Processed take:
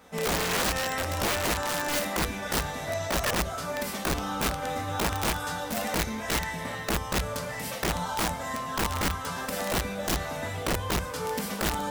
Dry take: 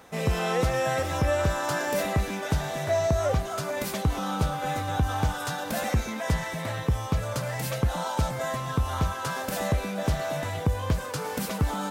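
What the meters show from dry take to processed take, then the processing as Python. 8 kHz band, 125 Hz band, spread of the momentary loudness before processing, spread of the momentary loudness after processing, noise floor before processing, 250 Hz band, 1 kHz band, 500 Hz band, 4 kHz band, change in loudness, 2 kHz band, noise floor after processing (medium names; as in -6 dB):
+4.5 dB, -7.5 dB, 5 LU, 5 LU, -34 dBFS, -1.5 dB, -0.5 dB, -3.5 dB, +4.5 dB, -1.0 dB, +2.0 dB, -36 dBFS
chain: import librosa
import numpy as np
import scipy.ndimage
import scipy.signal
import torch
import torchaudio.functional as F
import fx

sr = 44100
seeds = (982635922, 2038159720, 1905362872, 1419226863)

y = fx.rev_double_slope(x, sr, seeds[0], early_s=0.31, late_s=1.7, knee_db=-18, drr_db=-1.5)
y = (np.mod(10.0 ** (16.5 / 20.0) * y + 1.0, 2.0) - 1.0) / 10.0 ** (16.5 / 20.0)
y = F.gain(torch.from_numpy(y), -5.0).numpy()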